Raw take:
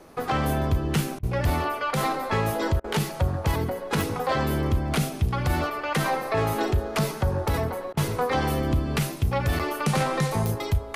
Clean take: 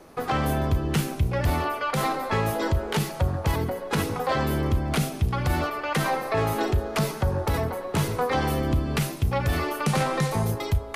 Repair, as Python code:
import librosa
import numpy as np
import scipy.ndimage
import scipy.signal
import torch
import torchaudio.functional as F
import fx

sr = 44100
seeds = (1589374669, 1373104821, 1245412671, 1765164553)

y = fx.fix_declick_ar(x, sr, threshold=10.0)
y = fx.fix_interpolate(y, sr, at_s=(9.59,), length_ms=6.4)
y = fx.fix_interpolate(y, sr, at_s=(1.19, 2.8, 7.93), length_ms=40.0)